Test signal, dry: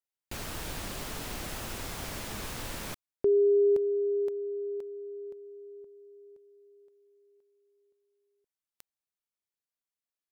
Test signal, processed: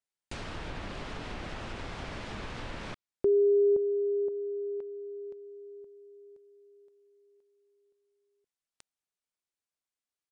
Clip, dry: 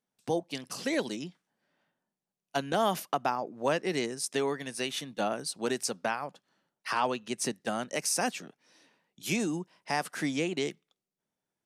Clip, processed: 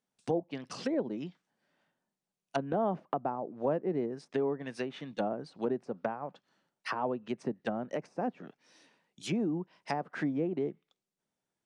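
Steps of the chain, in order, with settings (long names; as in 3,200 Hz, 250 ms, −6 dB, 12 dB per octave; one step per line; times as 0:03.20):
treble cut that deepens with the level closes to 690 Hz, closed at −28 dBFS
downsampling to 22,050 Hz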